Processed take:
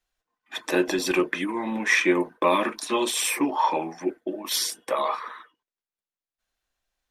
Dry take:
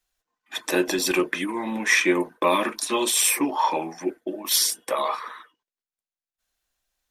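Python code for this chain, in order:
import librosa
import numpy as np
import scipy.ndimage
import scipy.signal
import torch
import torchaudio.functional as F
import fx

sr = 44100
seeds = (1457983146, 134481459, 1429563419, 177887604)

y = fx.high_shelf(x, sr, hz=5500.0, db=-9.5)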